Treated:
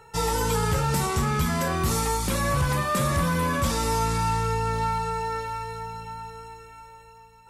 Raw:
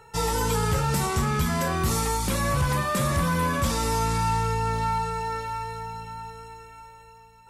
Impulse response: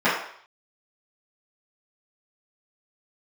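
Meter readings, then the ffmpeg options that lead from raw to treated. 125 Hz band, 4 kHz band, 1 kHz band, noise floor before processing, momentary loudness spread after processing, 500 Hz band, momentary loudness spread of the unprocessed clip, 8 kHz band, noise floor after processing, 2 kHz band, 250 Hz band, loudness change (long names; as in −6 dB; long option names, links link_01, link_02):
0.0 dB, 0.0 dB, 0.0 dB, −50 dBFS, 12 LU, +1.0 dB, 12 LU, 0.0 dB, −50 dBFS, 0.0 dB, 0.0 dB, 0.0 dB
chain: -filter_complex "[0:a]asplit=2[link_01][link_02];[1:a]atrim=start_sample=2205[link_03];[link_02][link_03]afir=irnorm=-1:irlink=0,volume=-35dB[link_04];[link_01][link_04]amix=inputs=2:normalize=0"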